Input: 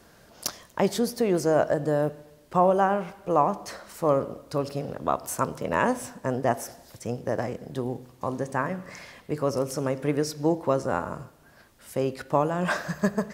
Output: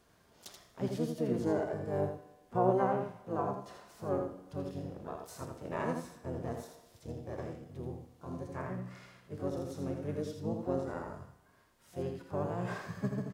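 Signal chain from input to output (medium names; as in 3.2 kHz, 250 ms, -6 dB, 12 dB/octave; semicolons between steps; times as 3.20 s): harmonic-percussive split percussive -13 dB; feedback comb 93 Hz, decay 1.3 s, harmonics all, mix 60%; harmony voices -7 st -2 dB, +5 st -12 dB; delay 82 ms -6 dB; trim -3.5 dB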